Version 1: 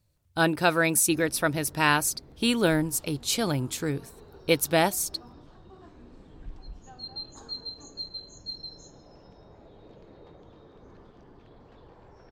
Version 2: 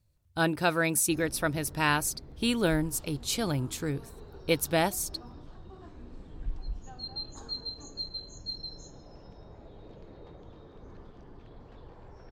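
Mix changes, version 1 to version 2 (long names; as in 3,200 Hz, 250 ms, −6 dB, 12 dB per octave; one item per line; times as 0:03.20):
speech −4.0 dB
master: add low-shelf EQ 91 Hz +8.5 dB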